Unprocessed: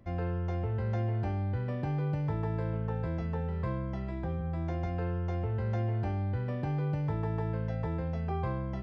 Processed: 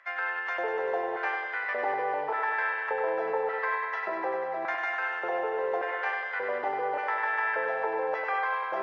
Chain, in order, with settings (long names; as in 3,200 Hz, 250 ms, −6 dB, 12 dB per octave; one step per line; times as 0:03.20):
auto-filter high-pass square 0.86 Hz 440–1,700 Hz
dynamic equaliser 900 Hz, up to +5 dB, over −53 dBFS, Q 2.6
in parallel at +2 dB: compressor whose output falls as the input rises −43 dBFS, ratio −0.5
on the sum: three-way crossover with the lows and the highs turned down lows −22 dB, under 450 Hz, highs −14 dB, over 2,100 Hz
on a send: feedback echo with a high-pass in the loop 98 ms, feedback 80%, high-pass 250 Hz, level −6 dB
on the sum: level +5.5 dB
Ogg Vorbis 48 kbit/s 16,000 Hz